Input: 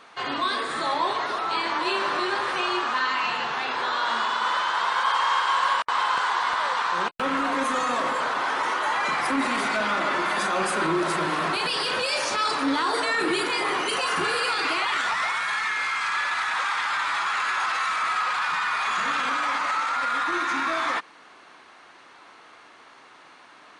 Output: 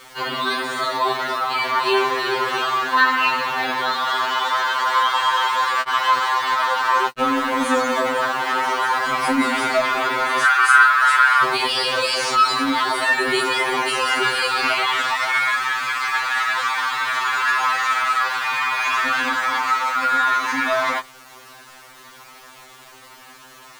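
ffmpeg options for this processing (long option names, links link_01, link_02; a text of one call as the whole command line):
ffmpeg -i in.wav -filter_complex "[0:a]acrusher=bits=7:mix=0:aa=0.000001,asettb=1/sr,asplit=3[link_01][link_02][link_03];[link_01]atrim=end=10.434[link_04];[link_02]atrim=start=10.43:end=11.43,asetpts=PTS-STARTPTS,afade=type=in:duration=0.004:curve=qsin,afade=type=out:start_time=0.996:duration=0.004:curve=qsin,highpass=frequency=1400:width_type=q:width=4.6[link_05];[link_03]atrim=start=11.426[link_06];[link_04][link_05]acrossfade=duration=0.004:curve1=hsin:curve2=qsin[link_07];[link_07][link_06]acrossfade=duration=0.004:curve1=qsin:curve2=hsin,afftfilt=real='re*2.45*eq(mod(b,6),0)':imag='im*2.45*eq(mod(b,6),0)':win_size=2048:overlap=0.75,volume=7dB" out.wav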